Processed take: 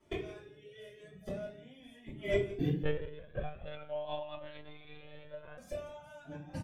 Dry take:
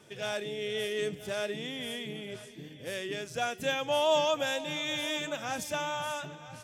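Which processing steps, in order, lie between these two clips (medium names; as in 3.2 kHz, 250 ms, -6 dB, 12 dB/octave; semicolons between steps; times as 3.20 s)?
reverb removal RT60 1.3 s; gate -46 dBFS, range -23 dB; treble shelf 2.1 kHz -9.5 dB; inverted gate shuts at -34 dBFS, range -31 dB; delay 169 ms -15.5 dB; simulated room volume 35 m³, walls mixed, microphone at 2.4 m; 2.83–5.58 s: monotone LPC vocoder at 8 kHz 150 Hz; Shepard-style flanger rising 0.44 Hz; trim +10 dB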